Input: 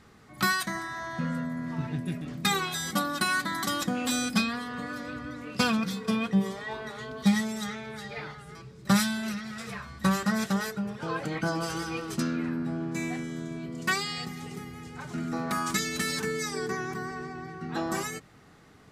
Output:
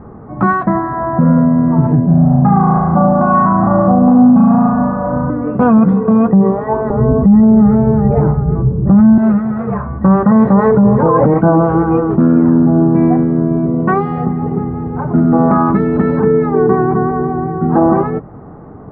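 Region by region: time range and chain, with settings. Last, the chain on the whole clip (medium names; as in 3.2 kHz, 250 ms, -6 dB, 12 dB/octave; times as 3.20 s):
2.06–5.30 s: FFT filter 150 Hz 0 dB, 390 Hz -14 dB, 740 Hz +3 dB, 4.3 kHz -23 dB + flutter echo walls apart 6.2 m, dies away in 1.4 s
6.90–9.18 s: steep low-pass 2.7 kHz 96 dB/octave + tilt EQ -4 dB/octave
10.27–11.34 s: rippled EQ curve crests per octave 1, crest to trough 7 dB + level flattener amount 50%
whole clip: low-pass 1 kHz 24 dB/octave; loudness maximiser +24 dB; trim -1 dB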